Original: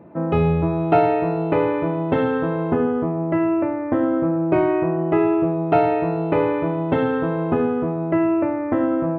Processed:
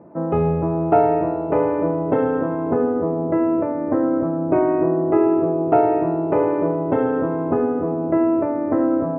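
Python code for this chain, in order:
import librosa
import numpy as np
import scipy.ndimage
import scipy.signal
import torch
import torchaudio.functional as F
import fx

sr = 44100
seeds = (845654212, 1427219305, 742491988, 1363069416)

y = scipy.signal.sosfilt(scipy.signal.butter(2, 1200.0, 'lowpass', fs=sr, output='sos'), x)
y = fx.low_shelf(y, sr, hz=190.0, db=-7.5)
y = fx.echo_bbd(y, sr, ms=289, stages=1024, feedback_pct=79, wet_db=-8.5)
y = y * librosa.db_to_amplitude(2.0)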